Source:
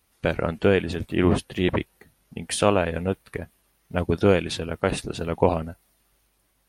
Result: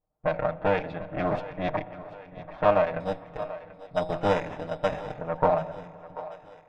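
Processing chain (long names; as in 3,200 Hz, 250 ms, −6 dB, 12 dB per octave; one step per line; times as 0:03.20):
lower of the sound and its delayed copy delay 6.5 ms
low-pass that shuts in the quiet parts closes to 500 Hz, open at −15.5 dBFS
low shelf with overshoot 500 Hz −6.5 dB, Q 3
notch filter 3,000 Hz, Q 8.5
hum removal 56.84 Hz, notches 17
0:03.00–0:05.14: sample-rate reduction 4,400 Hz, jitter 0%
head-to-tape spacing loss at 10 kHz 30 dB
echo with a time of its own for lows and highs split 340 Hz, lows 336 ms, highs 737 ms, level −15.5 dB
spring reverb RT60 3.2 s, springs 40 ms, chirp 60 ms, DRR 19 dB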